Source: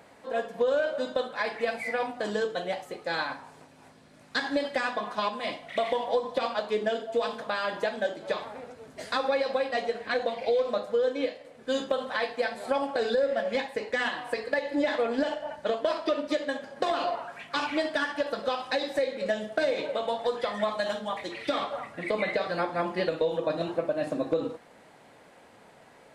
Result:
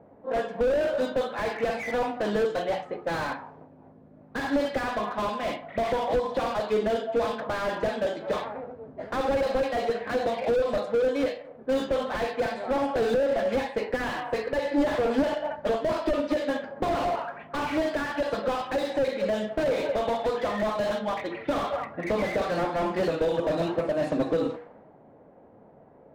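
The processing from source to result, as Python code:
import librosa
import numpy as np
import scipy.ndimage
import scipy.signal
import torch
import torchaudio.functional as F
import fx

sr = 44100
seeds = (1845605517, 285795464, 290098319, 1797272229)

y = fx.hum_notches(x, sr, base_hz=60, count=8)
y = fx.env_lowpass(y, sr, base_hz=500.0, full_db=-24.0)
y = fx.slew_limit(y, sr, full_power_hz=24.0)
y = F.gain(torch.from_numpy(y), 5.5).numpy()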